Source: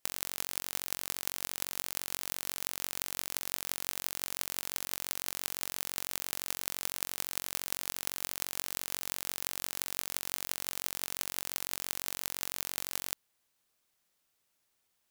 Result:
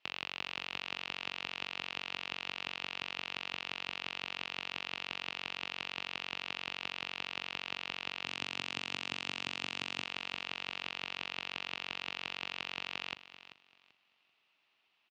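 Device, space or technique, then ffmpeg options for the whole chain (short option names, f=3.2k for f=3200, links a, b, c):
overdrive pedal into a guitar cabinet: -filter_complex "[0:a]asplit=2[a][b];[b]highpass=f=720:p=1,volume=13dB,asoftclip=type=tanh:threshold=-3.5dB[c];[a][c]amix=inputs=2:normalize=0,lowpass=f=4k:p=1,volume=-6dB,highpass=100,equalizer=f=520:t=q:w=4:g=-7,equalizer=f=1.6k:t=q:w=4:g=-5,equalizer=f=2.7k:t=q:w=4:g=9,lowpass=f=4k:w=0.5412,lowpass=f=4k:w=1.3066,asettb=1/sr,asplit=3[d][e][f];[d]atrim=end=8.254[g];[e]atrim=start=8.25:end=10.04,asetpts=PTS-STARTPTS,afade=t=in:d=0.004:c=qsin,afade=t=out:st=1.786:d=0.004:c=qsin,equalizer=f=125:t=o:w=1:g=6,equalizer=f=250:t=o:w=1:g=6,equalizer=f=8k:t=o:w=1:g=11[h];[f]atrim=start=10.036[i];[g][h]acrossfade=d=0.004:c1=hsin:c2=qsin[j];[j][i]acrossfade=d=0.004:c1=qsin:c2=hsin,aecho=1:1:388|776|1164:0.2|0.0459|0.0106"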